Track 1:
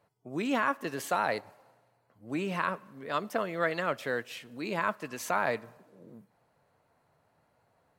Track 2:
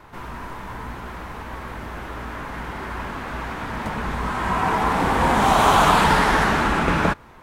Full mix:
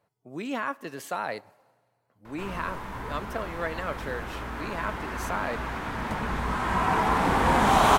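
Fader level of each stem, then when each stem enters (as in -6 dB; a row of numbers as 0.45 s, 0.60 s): -2.5 dB, -3.0 dB; 0.00 s, 2.25 s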